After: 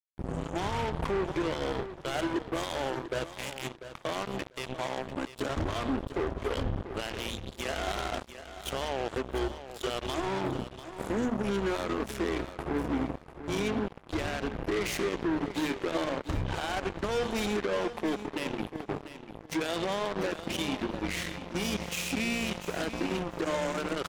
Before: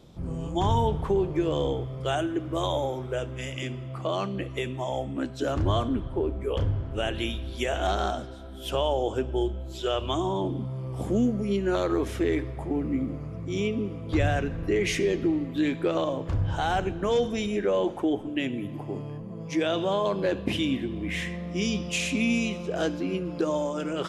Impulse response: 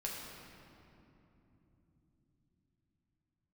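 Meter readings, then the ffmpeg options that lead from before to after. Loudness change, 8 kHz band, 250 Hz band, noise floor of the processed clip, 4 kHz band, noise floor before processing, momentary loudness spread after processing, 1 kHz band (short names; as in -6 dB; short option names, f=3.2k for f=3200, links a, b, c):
-5.0 dB, -0.5 dB, -5.0 dB, -49 dBFS, -2.5 dB, -38 dBFS, 7 LU, -3.5 dB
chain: -filter_complex "[0:a]bandreject=f=60:t=h:w=6,bandreject=f=120:t=h:w=6,bandreject=f=180:t=h:w=6,bandreject=f=240:t=h:w=6,bandreject=f=300:t=h:w=6,adynamicequalizer=threshold=0.00631:dfrequency=110:dqfactor=1.3:tfrequency=110:tqfactor=1.3:attack=5:release=100:ratio=0.375:range=3.5:mode=cutabove:tftype=bell,alimiter=limit=-24dB:level=0:latency=1:release=67,acrusher=bits=4:mix=0:aa=0.5,asplit=2[a][b];[b]aecho=0:1:694|1388:0.251|0.0427[c];[a][c]amix=inputs=2:normalize=0"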